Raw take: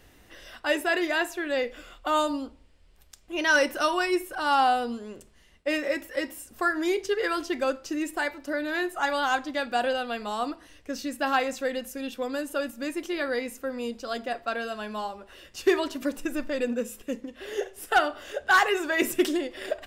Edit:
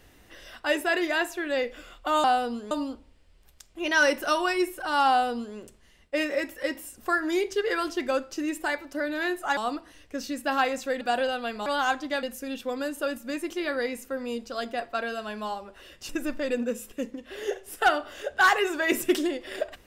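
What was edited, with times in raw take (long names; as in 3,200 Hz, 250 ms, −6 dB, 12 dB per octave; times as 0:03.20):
0:04.62–0:05.09: duplicate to 0:02.24
0:09.10–0:09.67: swap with 0:10.32–0:11.76
0:15.62–0:16.19: remove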